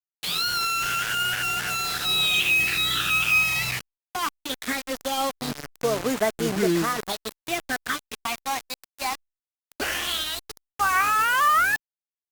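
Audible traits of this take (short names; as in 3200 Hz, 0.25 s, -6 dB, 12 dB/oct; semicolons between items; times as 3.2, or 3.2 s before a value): phasing stages 8, 0.2 Hz, lowest notch 440–4100 Hz; a quantiser's noise floor 6-bit, dither none; Opus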